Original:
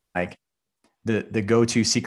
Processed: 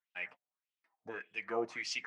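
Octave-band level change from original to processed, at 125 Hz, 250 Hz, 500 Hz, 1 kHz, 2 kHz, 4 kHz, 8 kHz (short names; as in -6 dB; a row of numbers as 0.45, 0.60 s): -35.5 dB, -24.5 dB, -16.0 dB, -11.0 dB, -8.5 dB, -15.5 dB, under -20 dB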